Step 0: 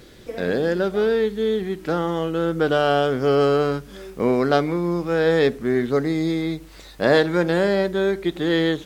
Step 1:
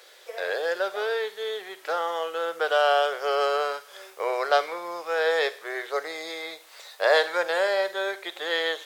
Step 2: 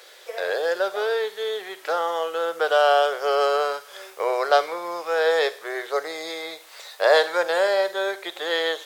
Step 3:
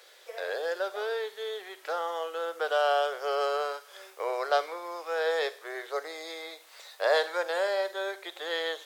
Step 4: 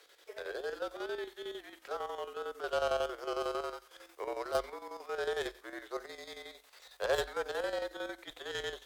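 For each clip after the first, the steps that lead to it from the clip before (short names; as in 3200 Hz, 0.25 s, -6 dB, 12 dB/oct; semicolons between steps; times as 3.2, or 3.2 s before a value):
inverse Chebyshev high-pass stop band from 270 Hz, stop band 40 dB; on a send at -19.5 dB: tilt +4 dB/oct + reverb RT60 0.60 s, pre-delay 27 ms
dynamic EQ 2200 Hz, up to -4 dB, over -39 dBFS, Q 1.1; gain +4 dB
HPF 290 Hz 12 dB/oct; gain -7.5 dB
tracing distortion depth 0.094 ms; chopper 11 Hz, depth 60%, duty 65%; frequency shift -48 Hz; gain -5.5 dB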